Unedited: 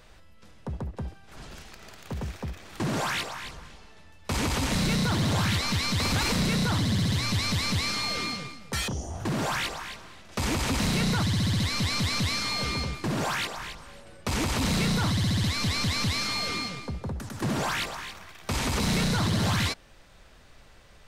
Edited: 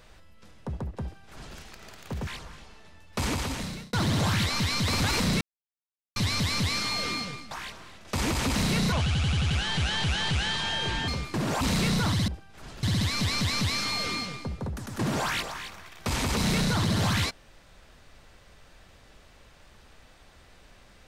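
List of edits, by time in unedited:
1.02–1.57 copy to 15.26
2.27–3.39 cut
4.32–5.05 fade out
6.53–7.28 mute
8.63–9.75 cut
11.16–12.78 speed 75%
13.31–14.59 cut

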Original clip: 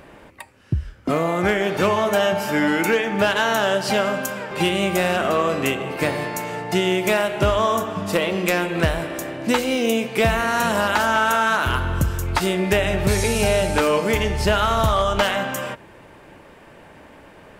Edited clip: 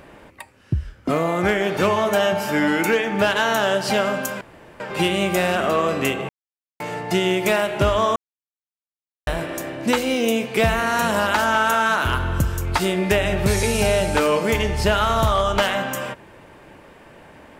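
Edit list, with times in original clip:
4.41 insert room tone 0.39 s
5.9–6.41 mute
7.77–8.88 mute

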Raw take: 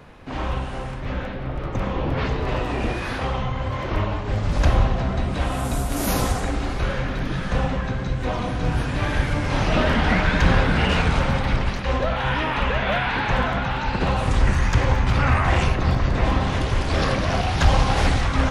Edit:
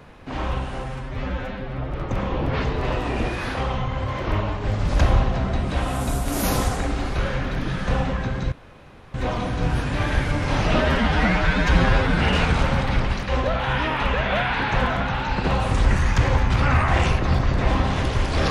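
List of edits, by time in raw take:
0.84–1.56 stretch 1.5×
8.16 insert room tone 0.62 s
9.83–10.74 stretch 1.5×

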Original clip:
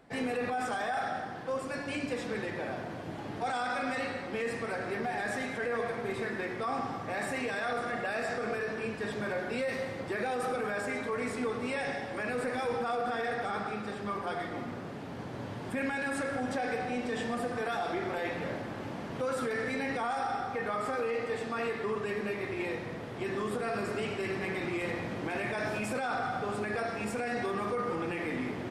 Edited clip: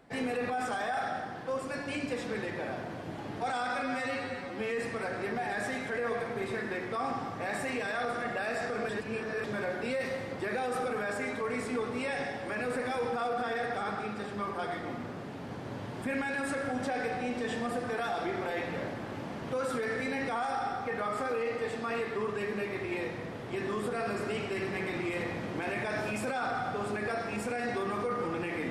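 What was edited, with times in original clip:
3.82–4.46 stretch 1.5×
8.57–9.12 reverse

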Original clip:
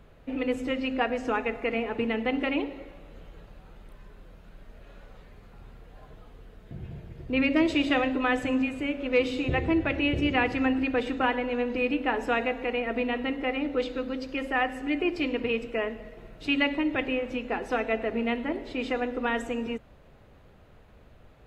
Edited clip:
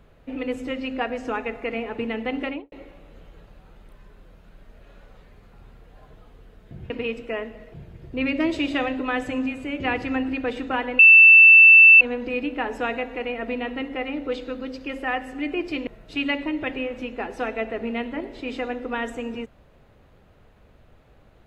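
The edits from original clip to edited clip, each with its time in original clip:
2.44–2.72 studio fade out
8.96–10.3 cut
11.49 add tone 2660 Hz -6.5 dBFS 1.02 s
15.35–16.19 move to 6.9

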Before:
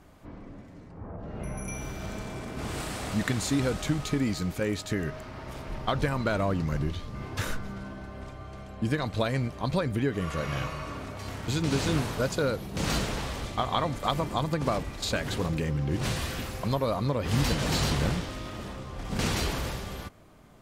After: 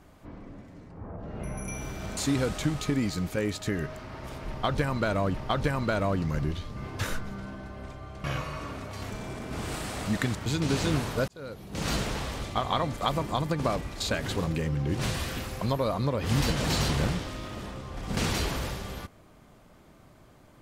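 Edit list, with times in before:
2.17–3.41 move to 11.37
5.72–6.58 loop, 2 plays
8.62–10.5 cut
12.3–13.02 fade in

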